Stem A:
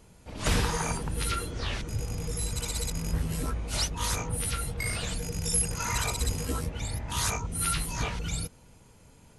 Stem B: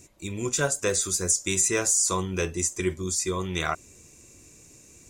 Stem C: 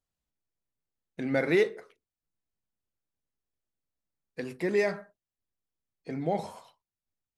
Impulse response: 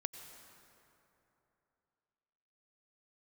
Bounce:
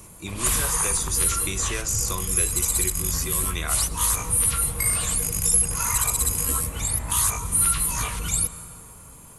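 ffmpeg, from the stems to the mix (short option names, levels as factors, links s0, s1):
-filter_complex "[0:a]equalizer=f=1100:t=o:w=0.25:g=12,aexciter=amount=5:drive=6.6:freq=7500,volume=1.19,asplit=2[s0][s1];[s1]volume=0.668[s2];[1:a]lowpass=5900,volume=1.33[s3];[3:a]atrim=start_sample=2205[s4];[s2][s4]afir=irnorm=-1:irlink=0[s5];[s0][s3][s5]amix=inputs=3:normalize=0,acrossover=split=92|1400|6700[s6][s7][s8][s9];[s6]acompressor=threshold=0.0398:ratio=4[s10];[s7]acompressor=threshold=0.02:ratio=4[s11];[s8]acompressor=threshold=0.0316:ratio=4[s12];[s9]acompressor=threshold=0.0794:ratio=4[s13];[s10][s11][s12][s13]amix=inputs=4:normalize=0"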